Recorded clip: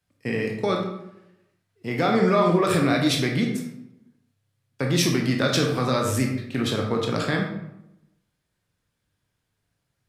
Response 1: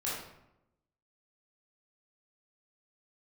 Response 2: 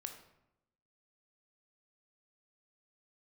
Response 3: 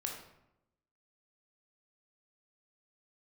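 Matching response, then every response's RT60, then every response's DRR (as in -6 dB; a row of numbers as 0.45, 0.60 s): 3; 0.85, 0.85, 0.85 s; -8.0, 5.0, 0.5 dB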